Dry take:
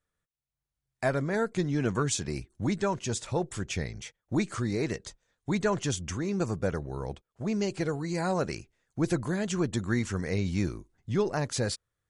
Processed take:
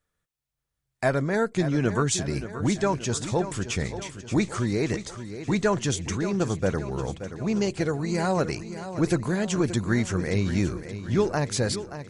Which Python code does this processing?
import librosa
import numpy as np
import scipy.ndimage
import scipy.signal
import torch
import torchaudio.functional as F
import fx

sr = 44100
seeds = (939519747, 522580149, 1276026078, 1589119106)

y = fx.echo_feedback(x, sr, ms=577, feedback_pct=54, wet_db=-11.5)
y = y * librosa.db_to_amplitude(4.0)